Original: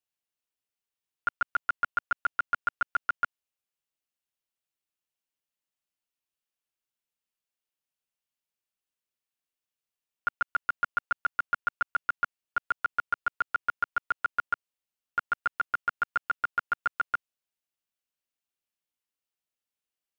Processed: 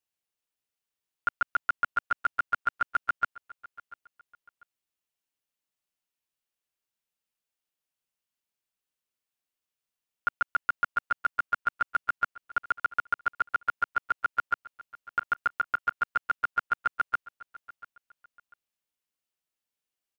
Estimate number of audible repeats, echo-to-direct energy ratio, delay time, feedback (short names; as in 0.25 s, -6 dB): 2, -19.0 dB, 0.692 s, 29%